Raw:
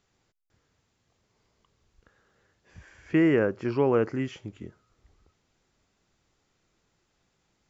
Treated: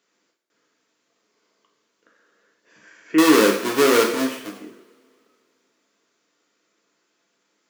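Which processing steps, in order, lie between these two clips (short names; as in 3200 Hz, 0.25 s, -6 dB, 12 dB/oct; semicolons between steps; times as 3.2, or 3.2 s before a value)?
3.18–4.57 half-waves squared off; HPF 250 Hz 24 dB/oct; notch 780 Hz, Q 5.1; two-slope reverb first 0.7 s, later 2.8 s, from -27 dB, DRR 0 dB; gain +2 dB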